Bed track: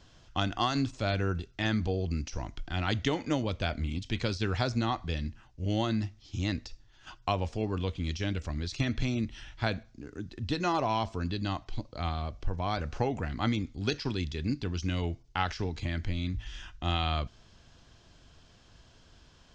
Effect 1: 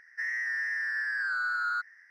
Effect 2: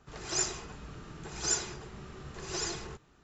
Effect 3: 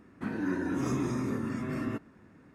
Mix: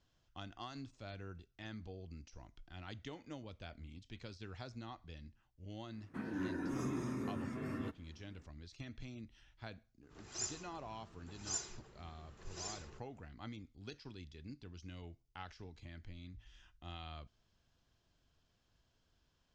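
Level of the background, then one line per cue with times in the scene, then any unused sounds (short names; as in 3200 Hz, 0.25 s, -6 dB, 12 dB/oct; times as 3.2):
bed track -19 dB
5.93 add 3 -8.5 dB
10.03 add 2 -14.5 dB + dynamic EQ 6600 Hz, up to +5 dB, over -42 dBFS, Q 0.8
not used: 1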